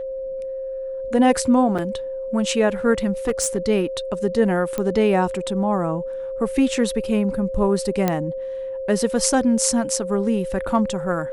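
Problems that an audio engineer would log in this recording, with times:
tone 530 Hz -26 dBFS
1.78–1.79 gap 6.1 ms
3.27–3.58 clipped -15 dBFS
4.78 pop -11 dBFS
8.08 pop -6 dBFS

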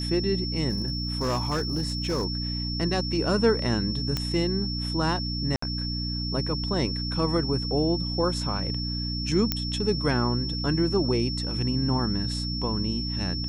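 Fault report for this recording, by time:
hum 60 Hz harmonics 5 -31 dBFS
tone 5400 Hz -32 dBFS
0.7–2.25 clipped -22 dBFS
4.17 pop -13 dBFS
5.56–5.62 gap 64 ms
9.52 pop -8 dBFS

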